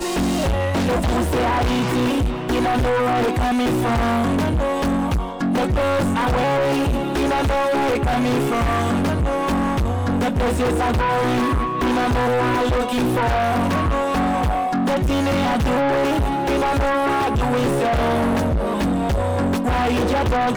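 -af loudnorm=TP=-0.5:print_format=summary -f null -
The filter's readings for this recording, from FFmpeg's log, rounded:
Input Integrated:    -19.8 LUFS
Input True Peak:     -16.6 dBTP
Input LRA:             0.6 LU
Input Threshold:     -29.8 LUFS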